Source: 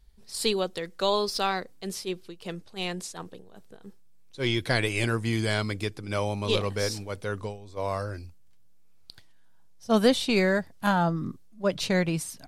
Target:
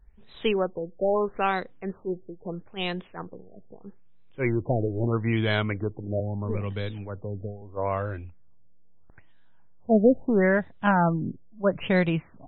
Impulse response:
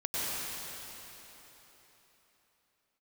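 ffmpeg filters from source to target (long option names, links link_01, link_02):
-filter_complex "[0:a]asettb=1/sr,asplit=3[link_01][link_02][link_03];[link_01]atrim=end=6.204[link_04];[link_02]atrim=start=6.2:end=7.62,asetpts=PTS-STARTPTS,afade=type=in:duration=0.004:curve=qsin,afade=type=out:start_time=1.416:duration=0.004:curve=qsin,acrossover=split=260|3000[link_05][link_06][link_07];[link_06]acompressor=threshold=-40dB:ratio=3[link_08];[link_05][link_08][link_07]amix=inputs=3:normalize=0[link_09];[link_03]atrim=start=7.616[link_10];[link_04][link_09]acrossfade=duration=0.004:curve1=hsin:curve2=qsin[link_11];[link_11][link_10]acrossfade=duration=0.004:curve1=qsin:curve2=hsin,afftfilt=real='re*lt(b*sr/1024,730*pow(4100/730,0.5+0.5*sin(2*PI*0.77*pts/sr)))':imag='im*lt(b*sr/1024,730*pow(4100/730,0.5+0.5*sin(2*PI*0.77*pts/sr)))':win_size=1024:overlap=0.75,volume=2.5dB"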